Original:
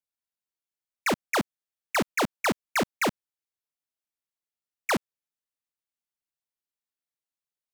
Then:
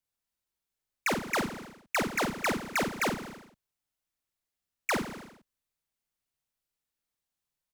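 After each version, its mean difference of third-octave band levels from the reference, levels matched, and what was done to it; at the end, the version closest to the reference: 7.0 dB: bass shelf 110 Hz +11 dB; doubling 48 ms -3 dB; on a send: feedback delay 80 ms, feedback 46%, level -12.5 dB; on the sum: compression 4:1, threshold -31 dBFS, peak gain reduction 10.5 dB; trim +2.5 dB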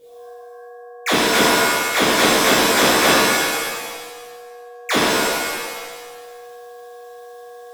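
12.0 dB: peaking EQ 3.5 kHz +10 dB 0.33 oct; reverse; upward compressor, threshold -46 dBFS; reverse; whistle 480 Hz -49 dBFS; pitch-shifted reverb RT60 1.4 s, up +7 st, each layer -2 dB, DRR -9.5 dB; trim -1 dB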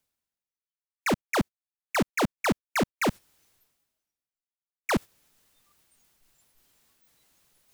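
2.0 dB: spectral noise reduction 25 dB; bass shelf 330 Hz +7 dB; reverse; upward compressor, threshold -25 dBFS; reverse; trim -2 dB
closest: third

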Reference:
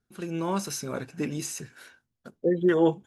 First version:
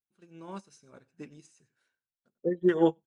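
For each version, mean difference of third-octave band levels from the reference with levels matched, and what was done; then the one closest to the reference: 11.0 dB: steep low-pass 10 kHz 72 dB/octave; on a send: delay 94 ms -18 dB; on the sum: upward expansion 2.5:1, over -36 dBFS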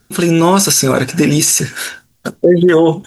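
6.0 dB: treble shelf 3.3 kHz +8 dB; compression 1.5:1, threshold -32 dBFS, peak gain reduction 6 dB; loudness maximiser +25 dB; trim -1 dB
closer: second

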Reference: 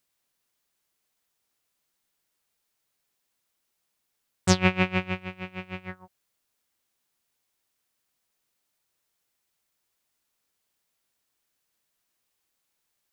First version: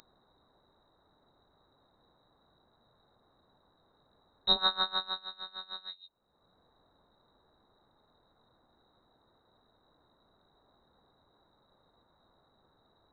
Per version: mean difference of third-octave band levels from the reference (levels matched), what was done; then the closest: 12.0 dB: elliptic band-stop 160–3000 Hz, stop band 40 dB; dynamic bell 3 kHz, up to +5 dB, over -48 dBFS, Q 2.6; upward compressor, threshold -37 dBFS; frequency inversion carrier 3.9 kHz; trim -1.5 dB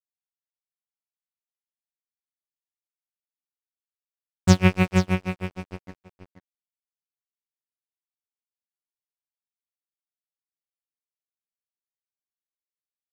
5.5 dB: bass shelf 230 Hz +11 dB; crossover distortion -29.5 dBFS; on a send: delay 481 ms -9.5 dB; on the sum: tape noise reduction on one side only decoder only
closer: second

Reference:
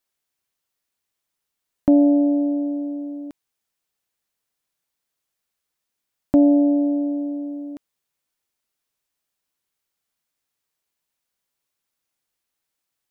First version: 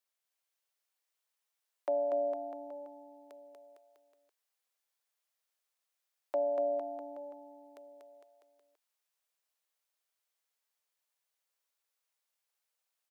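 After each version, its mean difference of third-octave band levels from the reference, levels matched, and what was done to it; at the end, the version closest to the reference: 4.5 dB: steep high-pass 440 Hz 48 dB/octave; on a send: bouncing-ball echo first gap 240 ms, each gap 0.9×, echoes 5; on the sum: trim -7 dB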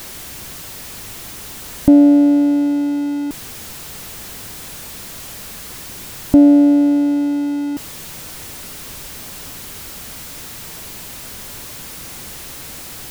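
7.5 dB: jump at every zero crossing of -26 dBFS; bass shelf 300 Hz +12 dB; trim -1 dB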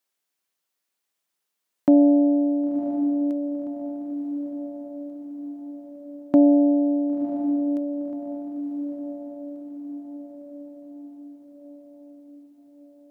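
2.0 dB: high-pass 190 Hz 12 dB/octave; on a send: echo that smears into a reverb 1030 ms, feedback 55%, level -8.5 dB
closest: third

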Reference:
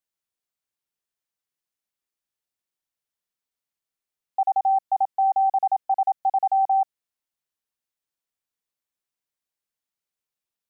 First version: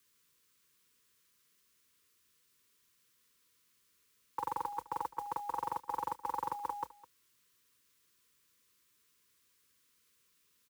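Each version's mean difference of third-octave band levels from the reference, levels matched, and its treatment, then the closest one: 18.5 dB: elliptic band-stop 460–960 Hz, stop band 40 dB; frequency shift +46 Hz; modulation noise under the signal 21 dB; delay 208 ms -19.5 dB; trim +16.5 dB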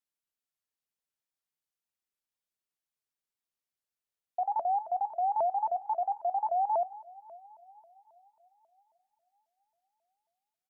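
2.0 dB: dynamic bell 610 Hz, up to -3 dB, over -32 dBFS, Q 2.4; delay 99 ms -14 dB; two-slope reverb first 0.22 s, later 4.7 s, from -22 dB, DRR 10 dB; vibrato with a chosen wave saw up 3.7 Hz, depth 250 cents; trim -6 dB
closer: second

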